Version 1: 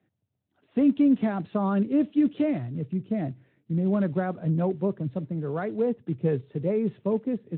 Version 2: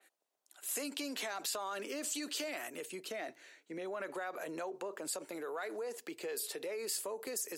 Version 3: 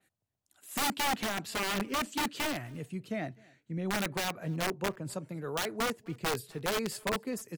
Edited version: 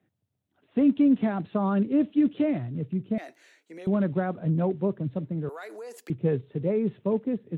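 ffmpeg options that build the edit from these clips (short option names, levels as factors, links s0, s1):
-filter_complex "[1:a]asplit=2[s0][s1];[0:a]asplit=3[s2][s3][s4];[s2]atrim=end=3.182[s5];[s0]atrim=start=3.178:end=3.872[s6];[s3]atrim=start=3.868:end=5.492[s7];[s1]atrim=start=5.488:end=6.102[s8];[s4]atrim=start=6.098[s9];[s5][s6]acrossfade=d=0.004:c1=hsin:c2=hsin[s10];[s10][s7]acrossfade=d=0.004:c1=hsin:c2=hsin[s11];[s11][s8]acrossfade=d=0.004:c1=hsin:c2=hsin[s12];[s12][s9]acrossfade=d=0.004:c1=hsin:c2=hsin"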